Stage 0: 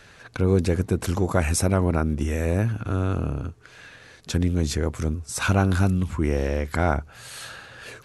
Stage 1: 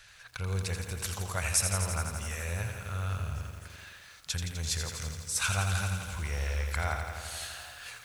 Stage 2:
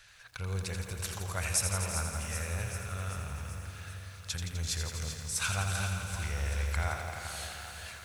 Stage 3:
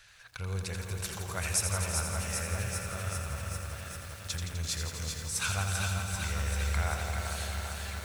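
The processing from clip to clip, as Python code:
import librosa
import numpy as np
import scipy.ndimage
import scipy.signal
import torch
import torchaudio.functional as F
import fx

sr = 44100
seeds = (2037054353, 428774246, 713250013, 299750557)

y1 = fx.tone_stack(x, sr, knobs='10-0-10')
y1 = fx.echo_stepped(y1, sr, ms=258, hz=290.0, octaves=0.7, feedback_pct=70, wet_db=-11)
y1 = fx.echo_crushed(y1, sr, ms=84, feedback_pct=80, bits=9, wet_db=-7.0)
y2 = fx.echo_alternate(y1, sr, ms=194, hz=870.0, feedback_pct=79, wet_db=-7)
y2 = y2 * 10.0 ** (-2.5 / 20.0)
y3 = fx.echo_crushed(y2, sr, ms=393, feedback_pct=80, bits=8, wet_db=-6.5)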